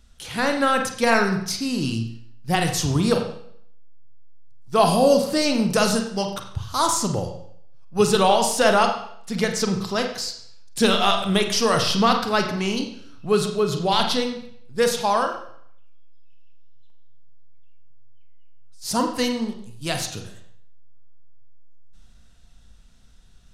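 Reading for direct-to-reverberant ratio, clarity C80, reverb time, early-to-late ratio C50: 4.0 dB, 9.5 dB, 0.65 s, 7.0 dB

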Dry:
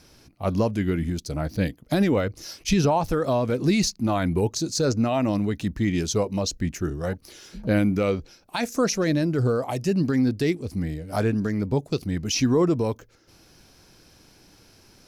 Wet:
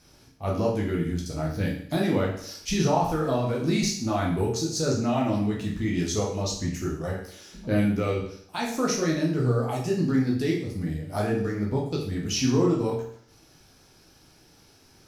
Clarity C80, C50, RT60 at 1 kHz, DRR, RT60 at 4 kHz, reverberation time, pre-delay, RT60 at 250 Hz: 8.0 dB, 5.0 dB, 0.60 s, −3.0 dB, 0.60 s, 0.60 s, 11 ms, 0.60 s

